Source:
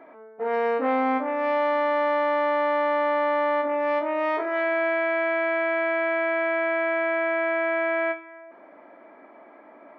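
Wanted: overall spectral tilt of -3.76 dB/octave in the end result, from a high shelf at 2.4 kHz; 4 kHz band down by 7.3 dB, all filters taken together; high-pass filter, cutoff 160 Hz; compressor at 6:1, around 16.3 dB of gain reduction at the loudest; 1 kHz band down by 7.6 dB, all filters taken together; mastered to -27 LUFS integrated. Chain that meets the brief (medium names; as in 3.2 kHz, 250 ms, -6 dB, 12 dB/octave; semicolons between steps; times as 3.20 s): high-pass 160 Hz; peaking EQ 1 kHz -9 dB; treble shelf 2.4 kHz -3.5 dB; peaking EQ 4 kHz -7 dB; compression 6:1, threshold -44 dBFS; trim +18 dB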